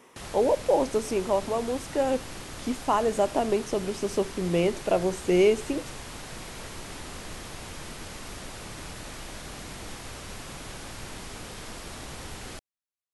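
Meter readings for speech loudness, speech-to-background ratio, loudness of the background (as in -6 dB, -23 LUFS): -26.5 LUFS, 13.0 dB, -39.5 LUFS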